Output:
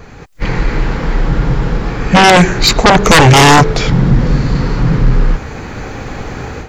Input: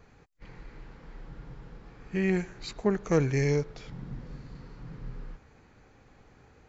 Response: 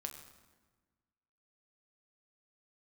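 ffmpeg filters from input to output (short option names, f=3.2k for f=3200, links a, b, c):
-af "aeval=exprs='0.237*sin(PI/2*7.08*val(0)/0.237)':c=same,dynaudnorm=f=200:g=3:m=12dB,volume=1dB"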